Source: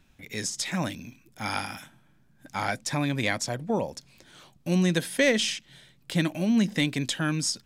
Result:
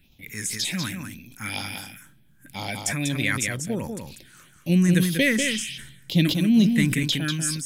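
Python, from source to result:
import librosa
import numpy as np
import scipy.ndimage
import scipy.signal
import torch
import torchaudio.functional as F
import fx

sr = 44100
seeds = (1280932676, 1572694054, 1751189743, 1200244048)

y = fx.high_shelf(x, sr, hz=3200.0, db=10.0)
y = fx.phaser_stages(y, sr, stages=4, low_hz=610.0, high_hz=1600.0, hz=2.0, feedback_pct=25)
y = fx.low_shelf(y, sr, hz=350.0, db=6.5, at=(4.69, 7.03))
y = y + 10.0 ** (-6.0 / 20.0) * np.pad(y, (int(193 * sr / 1000.0), 0))[:len(y)]
y = fx.sustainer(y, sr, db_per_s=61.0)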